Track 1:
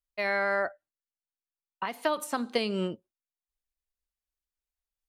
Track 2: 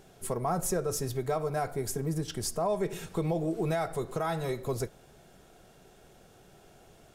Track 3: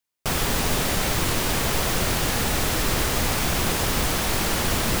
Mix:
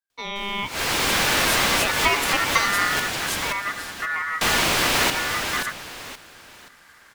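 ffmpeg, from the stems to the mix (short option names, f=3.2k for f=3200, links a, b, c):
-filter_complex "[0:a]volume=-0.5dB,asplit=2[a][b];[1:a]equalizer=f=870:t=o:w=1.5:g=-7,asoftclip=type=hard:threshold=-28.5dB,adelay=850,volume=-2.5dB[c];[2:a]asplit=2[d][e];[e]highpass=f=720:p=1,volume=33dB,asoftclip=type=tanh:threshold=-9.5dB[f];[d][f]amix=inputs=2:normalize=0,lowpass=f=3.4k:p=1,volume=-6dB,adelay=100,volume=-10.5dB,asplit=3[g][h][i];[g]atrim=end=3,asetpts=PTS-STARTPTS,afade=t=out:st=2.996:d=0.004:c=hsin[j];[h]atrim=start=3:end=4.41,asetpts=PTS-STARTPTS,volume=0[k];[i]atrim=start=4.41,asetpts=PTS-STARTPTS,afade=t=in:d=0.004:c=hsin[l];[j][k][l]concat=n=3:v=0:a=1,asplit=2[m][n];[n]volume=-6.5dB[o];[b]apad=whole_len=224936[p];[m][p]sidechaincompress=threshold=-41dB:ratio=12:attack=16:release=127[q];[o]aecho=0:1:527|1054|1581|2108|2635:1|0.32|0.102|0.0328|0.0105[r];[a][c][q][r]amix=inputs=4:normalize=0,dynaudnorm=f=180:g=9:m=11dB,aeval=exprs='val(0)*sin(2*PI*1600*n/s)':c=same"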